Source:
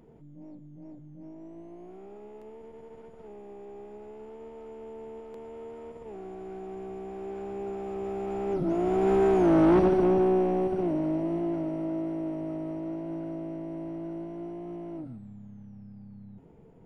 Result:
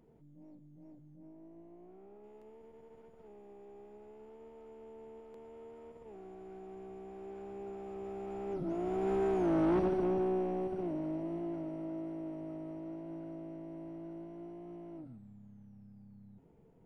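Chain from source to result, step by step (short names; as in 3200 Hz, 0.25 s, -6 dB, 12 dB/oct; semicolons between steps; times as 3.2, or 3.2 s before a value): 1.16–2.24 LPF 2000 Hz 6 dB/oct; gain -9 dB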